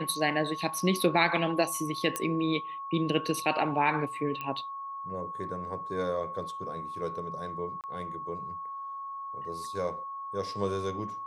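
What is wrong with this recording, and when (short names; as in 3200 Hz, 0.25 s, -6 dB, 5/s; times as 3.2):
tone 1100 Hz -36 dBFS
2.16 pop -14 dBFS
4.41 pop -22 dBFS
7.81–7.84 gap 28 ms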